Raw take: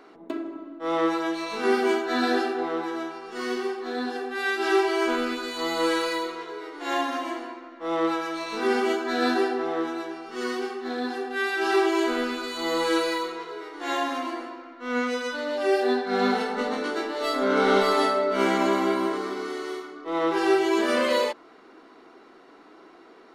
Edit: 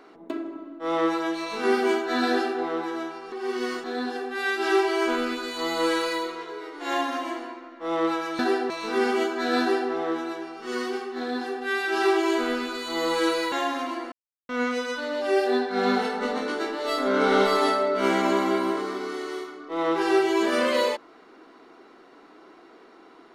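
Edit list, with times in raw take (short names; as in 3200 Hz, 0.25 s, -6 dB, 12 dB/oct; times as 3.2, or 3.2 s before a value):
3.32–3.84 reverse
9.29–9.6 copy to 8.39
13.21–13.88 cut
14.48–14.85 mute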